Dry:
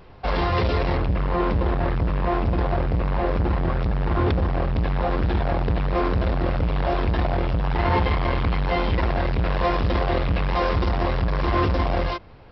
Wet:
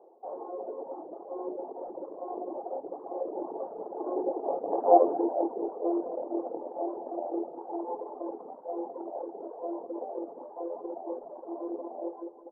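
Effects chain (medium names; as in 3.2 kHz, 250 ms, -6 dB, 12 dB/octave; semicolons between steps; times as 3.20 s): Doppler pass-by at 4.91 s, 9 m/s, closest 1.9 m; steep high-pass 340 Hz 36 dB/octave; reverse; upward compressor, threshold -31 dBFS; reverse; elliptic low-pass 810 Hz, stop band 70 dB; feedback delay 200 ms, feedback 49%, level -7.5 dB; simulated room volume 100 m³, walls mixed, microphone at 0.73 m; reverb removal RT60 1.7 s; trim +6 dB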